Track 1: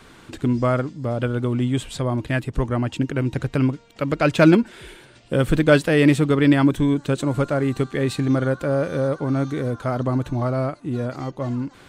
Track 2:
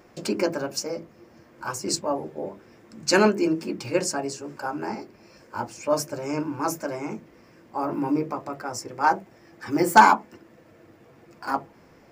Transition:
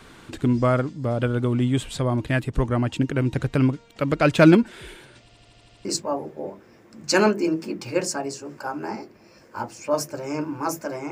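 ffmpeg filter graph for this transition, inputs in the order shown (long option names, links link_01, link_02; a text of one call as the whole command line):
ffmpeg -i cue0.wav -i cue1.wav -filter_complex "[0:a]apad=whole_dur=11.11,atrim=end=11.11,asplit=8[link_01][link_02][link_03][link_04][link_05][link_06][link_07][link_08];[link_01]atrim=end=5.292[link_09];[link_02]atrim=start=5.208:end=5.292[link_10];[link_03]atrim=start=5.208:end=5.292[link_11];[link_04]atrim=start=5.208:end=5.292[link_12];[link_05]atrim=start=5.208:end=5.292[link_13];[link_06]atrim=start=5.208:end=5.292[link_14];[link_07]atrim=start=5.208:end=5.292[link_15];[link_08]atrim=start=5.208:end=5.292[link_16];[1:a]atrim=start=1.838:end=7.1[link_17];[link_09][link_10]acrossfade=duration=0.004:curve1=hsin:curve2=hsin[link_18];[link_18][link_11]acrossfade=duration=0.004:curve1=hsin:curve2=hsin[link_19];[link_19][link_12]acrossfade=duration=0.004:curve1=hsin:curve2=hsin[link_20];[link_20][link_13]acrossfade=duration=0.004:curve1=hsin:curve2=hsin[link_21];[link_21][link_14]acrossfade=duration=0.004:curve1=hsin:curve2=hsin[link_22];[link_22][link_15]acrossfade=duration=0.004:curve1=hsin:curve2=hsin[link_23];[link_23][link_16]acrossfade=duration=0.004:curve1=hsin:curve2=hsin[link_24];[link_24][link_17]acrossfade=duration=0.004:curve1=hsin:curve2=hsin" out.wav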